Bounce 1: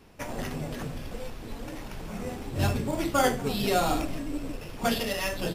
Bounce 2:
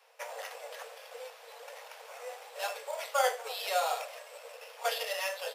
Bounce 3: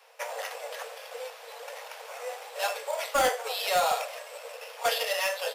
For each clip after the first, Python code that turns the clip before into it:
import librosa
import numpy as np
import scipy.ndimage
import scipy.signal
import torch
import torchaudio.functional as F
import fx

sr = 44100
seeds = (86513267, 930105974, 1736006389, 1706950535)

y1 = scipy.signal.sosfilt(scipy.signal.cheby1(8, 1.0, 460.0, 'highpass', fs=sr, output='sos'), x)
y1 = F.gain(torch.from_numpy(y1), -3.0).numpy()
y2 = np.clip(y1, -10.0 ** (-25.0 / 20.0), 10.0 ** (-25.0 / 20.0))
y2 = F.gain(torch.from_numpy(y2), 6.0).numpy()